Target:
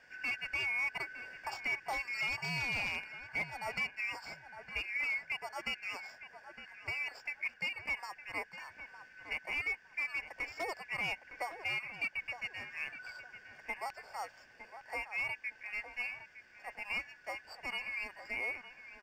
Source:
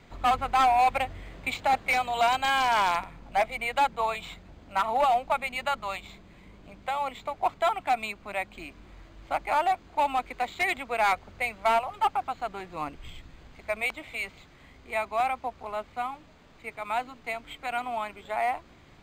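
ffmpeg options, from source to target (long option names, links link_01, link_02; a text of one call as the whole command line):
ffmpeg -i in.wav -filter_complex "[0:a]afftfilt=real='real(if(lt(b,272),68*(eq(floor(b/68),0)*1+eq(floor(b/68),1)*0+eq(floor(b/68),2)*3+eq(floor(b/68),3)*2)+mod(b,68),b),0)':imag='imag(if(lt(b,272),68*(eq(floor(b/68),0)*1+eq(floor(b/68),1)*0+eq(floor(b/68),2)*3+eq(floor(b/68),3)*2)+mod(b,68),b),0)':win_size=2048:overlap=0.75,alimiter=limit=-20.5dB:level=0:latency=1:release=349,asplit=2[link_01][link_02];[link_02]adelay=910,lowpass=frequency=1900:poles=1,volume=-10dB,asplit=2[link_03][link_04];[link_04]adelay=910,lowpass=frequency=1900:poles=1,volume=0.27,asplit=2[link_05][link_06];[link_06]adelay=910,lowpass=frequency=1900:poles=1,volume=0.27[link_07];[link_03][link_05][link_07]amix=inputs=3:normalize=0[link_08];[link_01][link_08]amix=inputs=2:normalize=0,volume=-7.5dB" out.wav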